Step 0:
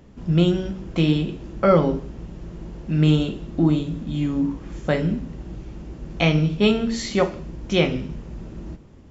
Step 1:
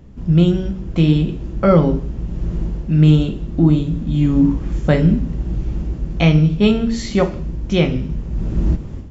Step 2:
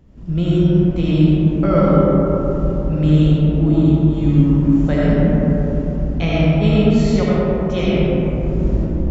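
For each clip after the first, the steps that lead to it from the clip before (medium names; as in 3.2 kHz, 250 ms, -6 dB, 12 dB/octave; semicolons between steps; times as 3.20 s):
bass shelf 200 Hz +11.5 dB; level rider gain up to 13.5 dB; trim -1 dB
reverberation RT60 4.0 s, pre-delay 40 ms, DRR -7.5 dB; trim -7.5 dB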